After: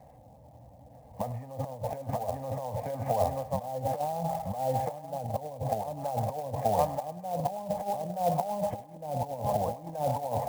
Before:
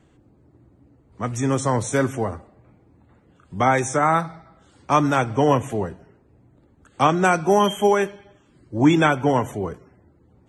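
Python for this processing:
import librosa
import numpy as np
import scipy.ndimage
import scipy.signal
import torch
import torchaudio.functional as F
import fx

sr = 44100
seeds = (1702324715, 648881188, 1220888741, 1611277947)

p1 = scipy.signal.sosfilt(scipy.signal.butter(4, 1900.0, 'lowpass', fs=sr, output='sos'), x)
p2 = fx.fixed_phaser(p1, sr, hz=1400.0, stages=6)
p3 = fx.echo_feedback(p2, sr, ms=929, feedback_pct=17, wet_db=-3.0)
p4 = fx.env_lowpass_down(p3, sr, base_hz=480.0, full_db=-19.5)
p5 = fx.highpass(p4, sr, hz=62.0, slope=6)
p6 = fx.low_shelf(p5, sr, hz=250.0, db=3.0)
p7 = fx.over_compress(p6, sr, threshold_db=-32.0, ratio=-0.5)
p8 = fx.band_shelf(p7, sr, hz=640.0, db=13.5, octaves=1.1)
p9 = p8 + fx.echo_thinned(p8, sr, ms=103, feedback_pct=75, hz=830.0, wet_db=-15.0, dry=0)
p10 = fx.clock_jitter(p9, sr, seeds[0], jitter_ms=0.026)
y = F.gain(torch.from_numpy(p10), -5.0).numpy()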